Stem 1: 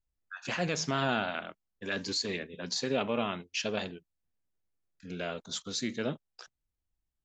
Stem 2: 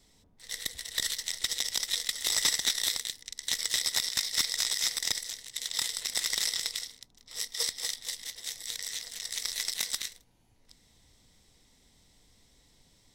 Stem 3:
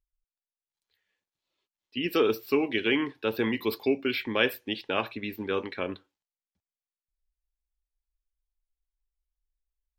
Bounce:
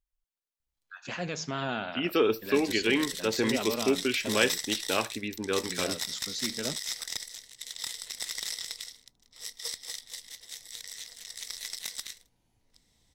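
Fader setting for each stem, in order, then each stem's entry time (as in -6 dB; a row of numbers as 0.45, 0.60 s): -3.0, -5.5, -0.5 dB; 0.60, 2.05, 0.00 s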